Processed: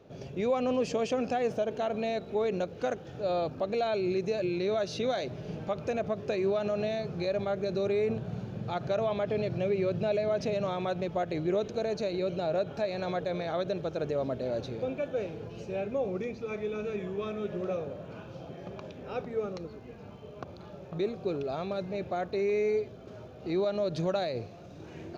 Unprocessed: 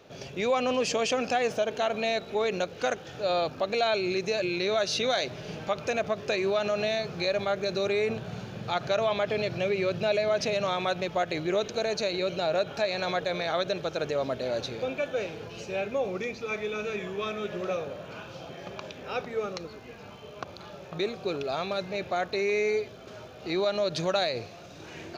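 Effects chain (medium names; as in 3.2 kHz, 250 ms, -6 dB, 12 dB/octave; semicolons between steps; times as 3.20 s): tilt shelf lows +7 dB, about 790 Hz; trim -4.5 dB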